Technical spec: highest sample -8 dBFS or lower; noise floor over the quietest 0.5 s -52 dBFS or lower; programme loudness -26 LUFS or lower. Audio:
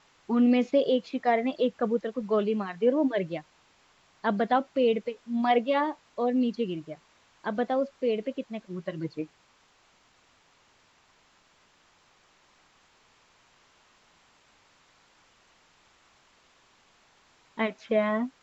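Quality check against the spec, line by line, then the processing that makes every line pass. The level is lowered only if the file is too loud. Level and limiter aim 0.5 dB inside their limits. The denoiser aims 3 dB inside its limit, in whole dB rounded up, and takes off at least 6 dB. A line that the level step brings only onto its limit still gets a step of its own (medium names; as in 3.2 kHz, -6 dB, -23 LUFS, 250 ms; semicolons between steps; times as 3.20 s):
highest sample -12.0 dBFS: pass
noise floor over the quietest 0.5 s -64 dBFS: pass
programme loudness -28.0 LUFS: pass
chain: none needed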